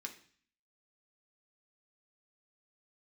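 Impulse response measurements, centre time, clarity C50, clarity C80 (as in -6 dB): 11 ms, 11.5 dB, 15.5 dB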